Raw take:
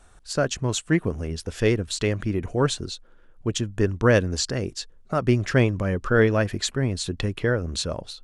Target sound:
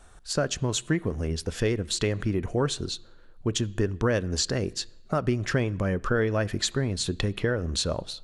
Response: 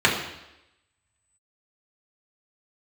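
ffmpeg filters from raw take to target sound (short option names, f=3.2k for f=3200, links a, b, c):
-filter_complex "[0:a]acompressor=threshold=-23dB:ratio=4,asplit=2[a][b];[1:a]atrim=start_sample=2205,highshelf=f=4.3k:g=6[c];[b][c]afir=irnorm=-1:irlink=0,volume=-38dB[d];[a][d]amix=inputs=2:normalize=0,volume=1dB"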